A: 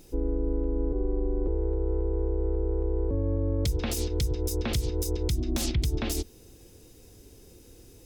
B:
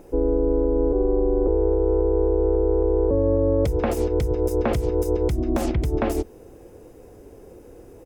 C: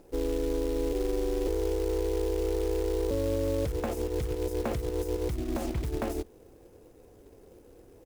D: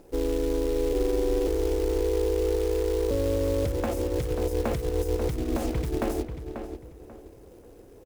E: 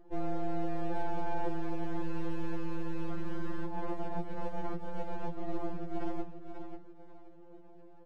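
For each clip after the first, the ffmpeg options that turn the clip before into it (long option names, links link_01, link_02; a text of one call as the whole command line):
ffmpeg -i in.wav -af "firequalizer=gain_entry='entry(110,0);entry(550,12);entry(3800,-13);entry(8200,-8)':delay=0.05:min_phase=1,volume=3dB" out.wav
ffmpeg -i in.wav -af "acrusher=bits=4:mode=log:mix=0:aa=0.000001,volume=-9dB" out.wav
ffmpeg -i in.wav -filter_complex "[0:a]asplit=2[link_01][link_02];[link_02]adelay=539,lowpass=frequency=2800:poles=1,volume=-8dB,asplit=2[link_03][link_04];[link_04]adelay=539,lowpass=frequency=2800:poles=1,volume=0.29,asplit=2[link_05][link_06];[link_06]adelay=539,lowpass=frequency=2800:poles=1,volume=0.29[link_07];[link_01][link_03][link_05][link_07]amix=inputs=4:normalize=0,volume=3dB" out.wav
ffmpeg -i in.wav -af "bandpass=frequency=280:width_type=q:width=1.2:csg=0,aeval=exprs='max(val(0),0)':channel_layout=same,afftfilt=real='re*2.83*eq(mod(b,8),0)':imag='im*2.83*eq(mod(b,8),0)':win_size=2048:overlap=0.75,volume=3dB" out.wav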